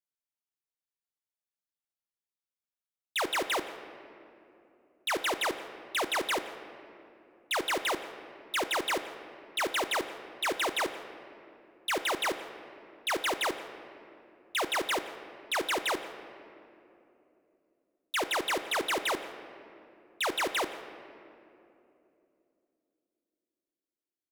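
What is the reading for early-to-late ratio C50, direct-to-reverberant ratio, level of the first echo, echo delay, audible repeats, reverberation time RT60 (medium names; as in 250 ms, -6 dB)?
10.5 dB, 9.0 dB, -21.5 dB, 169 ms, 1, 2.9 s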